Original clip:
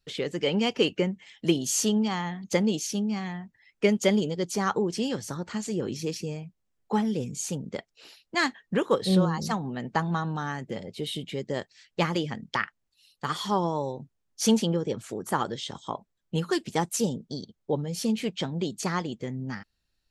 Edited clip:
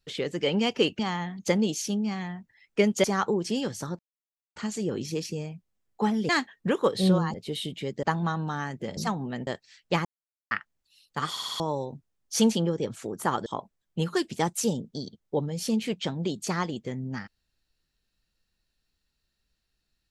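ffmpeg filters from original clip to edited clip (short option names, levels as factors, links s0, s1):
-filter_complex "[0:a]asplit=17[s0][s1][s2][s3][s4][s5][s6][s7][s8][s9][s10][s11][s12][s13][s14][s15][s16];[s0]atrim=end=0.992[s17];[s1]atrim=start=2.038:end=4.092[s18];[s2]atrim=start=4.518:end=5.47,asetpts=PTS-STARTPTS,afade=t=out:st=0.948:d=0.004:c=hsin,apad=pad_dur=0.57[s19];[s3]atrim=start=5.47:end=7.202,asetpts=PTS-STARTPTS,afade=t=in:d=0.004:c=hsin[s20];[s4]atrim=start=8.358:end=9.412[s21];[s5]atrim=start=10.848:end=11.542[s22];[s6]atrim=start=9.908:end=10.852[s23];[s7]atrim=start=9.408:end=9.912[s24];[s8]atrim=start=11.538:end=12.12,asetpts=PTS-STARTPTS,afade=t=out:st=0.578:d=0.004:c=hsin[s25];[s9]atrim=start=12.12:end=12.58,asetpts=PTS-STARTPTS,volume=0[s26];[s10]atrim=start=12.58:end=13.432,asetpts=PTS-STARTPTS,afade=t=in:d=0.004:c=hsin[s27];[s11]atrim=start=13.368:end=13.432[s28];[s12]atrim=start=13.368:end=13.432[s29];[s13]atrim=start=13.368:end=13.432[s30];[s14]atrim=start=13.368:end=13.432[s31];[s15]atrim=start=13.668:end=15.532[s32];[s16]atrim=start=15.818[s33];[s17][s18]acrossfade=d=0.004:c1=hsin:c2=hsin[s34];[s19][s20]concat=n=2:v=0:a=1[s35];[s34][s35]acrossfade=d=0.004:c1=hsin:c2=hsin[s36];[s36][s21]acrossfade=d=0.004:c1=hsin:c2=hsin[s37];[s37][s22]acrossfade=d=0.004:c1=hsin:c2=hsin[s38];[s38][s23]acrossfade=d=0.004:c1=hsin:c2=hsin[s39];[s39][s24]acrossfade=d=0.004:c1=hsin:c2=hsin[s40];[s25][s26][s27]concat=n=3:v=0:a=1[s41];[s40][s41]acrossfade=d=0.004:c1=hsin:c2=hsin[s42];[s42][s28]acrossfade=d=0.004:c1=hsin:c2=hsin[s43];[s43][s29]acrossfade=d=0.004:c1=hsin:c2=hsin[s44];[s44][s30]acrossfade=d=0.004:c1=hsin:c2=hsin[s45];[s45][s31]acrossfade=d=0.004:c1=hsin:c2=hsin[s46];[s46][s32]acrossfade=d=0.004:c1=hsin:c2=hsin[s47];[s47][s33]acrossfade=d=0.004:c1=hsin:c2=hsin"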